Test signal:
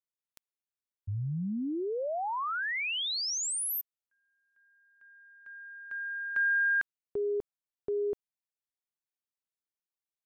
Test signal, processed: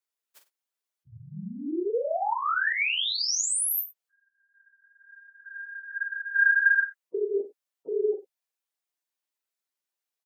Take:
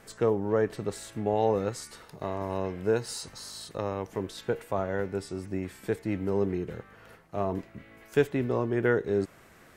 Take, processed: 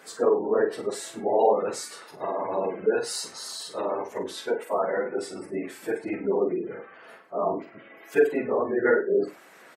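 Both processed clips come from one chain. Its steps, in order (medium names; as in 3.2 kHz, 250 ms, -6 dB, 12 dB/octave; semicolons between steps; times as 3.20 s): phase randomisation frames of 50 ms; high-pass 360 Hz 12 dB/octave; spectral gate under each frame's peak -25 dB strong; multi-tap echo 45/97 ms -8/-18.5 dB; trim +5 dB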